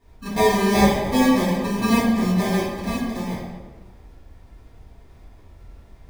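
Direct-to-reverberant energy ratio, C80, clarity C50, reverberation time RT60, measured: -12.5 dB, 2.5 dB, -0.5 dB, 1.4 s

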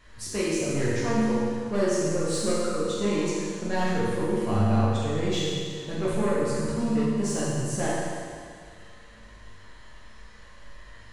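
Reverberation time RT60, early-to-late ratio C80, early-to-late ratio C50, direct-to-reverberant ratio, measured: 2.0 s, -0.5 dB, -2.5 dB, -8.0 dB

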